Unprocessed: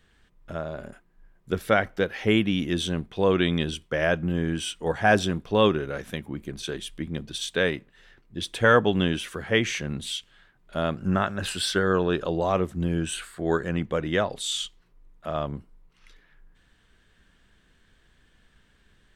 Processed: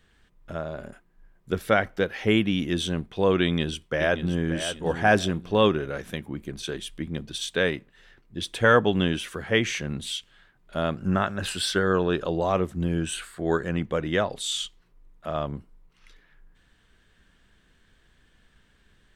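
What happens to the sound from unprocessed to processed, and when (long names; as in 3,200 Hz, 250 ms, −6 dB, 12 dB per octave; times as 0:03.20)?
0:03.42–0:04.50: delay throw 580 ms, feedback 30%, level −10 dB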